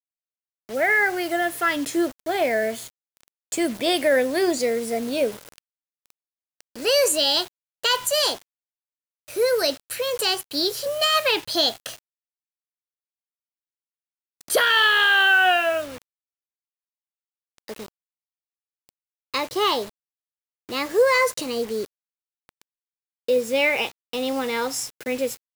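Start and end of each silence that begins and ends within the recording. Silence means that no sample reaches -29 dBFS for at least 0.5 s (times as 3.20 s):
2.83–3.52 s
5.31–6.80 s
8.35–9.34 s
11.91–14.50 s
15.85–17.68 s
17.84–19.34 s
19.85–20.69 s
21.85–23.29 s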